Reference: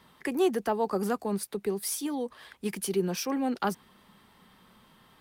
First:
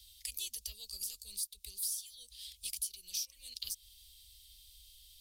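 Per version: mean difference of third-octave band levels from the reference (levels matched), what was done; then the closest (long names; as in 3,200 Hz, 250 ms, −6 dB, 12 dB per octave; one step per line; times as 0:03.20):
17.5 dB: inverse Chebyshev band-stop filter 150–1,600 Hz, stop band 50 dB
downward compressor 5 to 1, threshold −47 dBFS, peak gain reduction 16 dB
level +10.5 dB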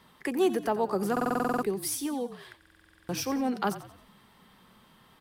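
5.5 dB: on a send: echo with shifted repeats 89 ms, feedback 43%, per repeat −40 Hz, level −14 dB
on the sum: buffer that repeats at 0:01.12/0:02.58, samples 2,048, times 10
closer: second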